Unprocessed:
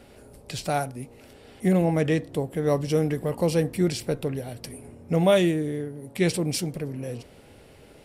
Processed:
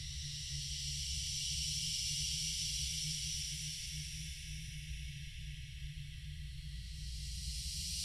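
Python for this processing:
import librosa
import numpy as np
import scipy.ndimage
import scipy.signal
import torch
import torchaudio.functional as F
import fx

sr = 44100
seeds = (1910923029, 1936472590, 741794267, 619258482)

y = scipy.signal.sosfilt(scipy.signal.cheby2(4, 70, [260.0, 1000.0], 'bandstop', fs=sr, output='sos'), x)
y = fx.env_lowpass(y, sr, base_hz=2200.0, full_db=-33.0)
y = fx.paulstretch(y, sr, seeds[0], factor=12.0, window_s=0.5, from_s=2.73)
y = y * 10.0 ** (6.5 / 20.0)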